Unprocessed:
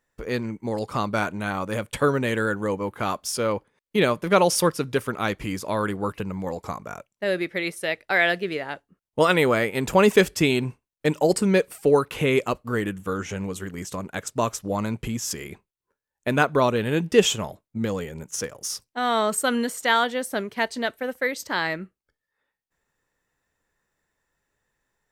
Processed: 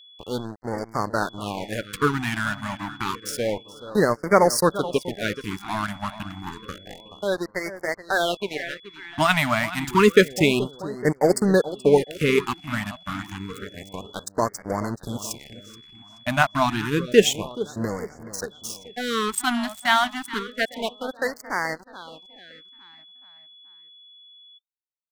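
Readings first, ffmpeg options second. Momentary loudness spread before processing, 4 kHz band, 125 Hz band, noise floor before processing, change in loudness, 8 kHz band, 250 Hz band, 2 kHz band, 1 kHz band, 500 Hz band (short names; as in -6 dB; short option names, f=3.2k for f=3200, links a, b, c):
12 LU, +1.0 dB, -0.5 dB, under -85 dBFS, +0.5 dB, -1.0 dB, 0.0 dB, 0.0 dB, +1.0 dB, 0.0 dB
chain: -filter_complex "[0:a]bandreject=f=65.17:t=h:w=4,bandreject=f=130.34:t=h:w=4,aeval=exprs='sgn(val(0))*max(abs(val(0))-0.0282,0)':c=same,aeval=exprs='val(0)+0.00316*sin(2*PI*3400*n/s)':c=same,asplit=2[a][b];[b]adelay=428,lowpass=f=4.5k:p=1,volume=-14dB,asplit=2[c][d];[d]adelay=428,lowpass=f=4.5k:p=1,volume=0.48,asplit=2[e][f];[f]adelay=428,lowpass=f=4.5k:p=1,volume=0.48,asplit=2[g][h];[h]adelay=428,lowpass=f=4.5k:p=1,volume=0.48,asplit=2[i][j];[j]adelay=428,lowpass=f=4.5k:p=1,volume=0.48[k];[c][e][g][i][k]amix=inputs=5:normalize=0[l];[a][l]amix=inputs=2:normalize=0,afftfilt=real='re*(1-between(b*sr/1024,400*pow(3200/400,0.5+0.5*sin(2*PI*0.29*pts/sr))/1.41,400*pow(3200/400,0.5+0.5*sin(2*PI*0.29*pts/sr))*1.41))':imag='im*(1-between(b*sr/1024,400*pow(3200/400,0.5+0.5*sin(2*PI*0.29*pts/sr))/1.41,400*pow(3200/400,0.5+0.5*sin(2*PI*0.29*pts/sr))*1.41))':win_size=1024:overlap=0.75,volume=3dB"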